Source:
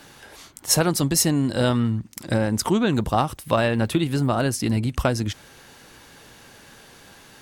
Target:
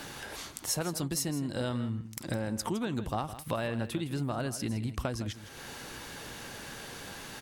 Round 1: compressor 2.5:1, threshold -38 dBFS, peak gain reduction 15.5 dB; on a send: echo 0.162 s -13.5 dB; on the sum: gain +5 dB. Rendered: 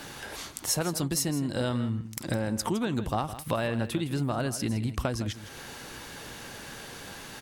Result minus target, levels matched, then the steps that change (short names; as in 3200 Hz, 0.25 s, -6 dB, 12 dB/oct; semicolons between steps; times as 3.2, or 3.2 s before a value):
compressor: peak gain reduction -4 dB
change: compressor 2.5:1, threshold -44.5 dBFS, peak gain reduction 19.5 dB